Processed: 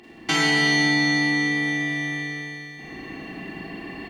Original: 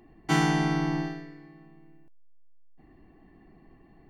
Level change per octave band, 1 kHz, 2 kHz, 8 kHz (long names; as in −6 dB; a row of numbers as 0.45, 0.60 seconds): +2.0, +15.5, +10.5 decibels